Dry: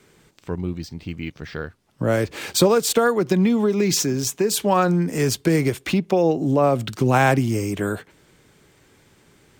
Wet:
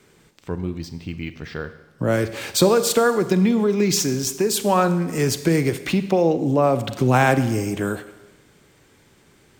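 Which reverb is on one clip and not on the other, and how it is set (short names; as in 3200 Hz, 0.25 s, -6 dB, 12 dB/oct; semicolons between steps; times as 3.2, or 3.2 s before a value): Schroeder reverb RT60 1.1 s, combs from 32 ms, DRR 11.5 dB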